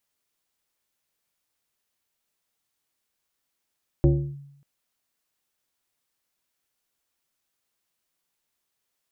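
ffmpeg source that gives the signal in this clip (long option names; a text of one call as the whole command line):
ffmpeg -f lavfi -i "aevalsrc='0.251*pow(10,-3*t/0.78)*sin(2*PI*141*t+1.2*clip(1-t/0.33,0,1)*sin(2*PI*1.46*141*t))':duration=0.59:sample_rate=44100" out.wav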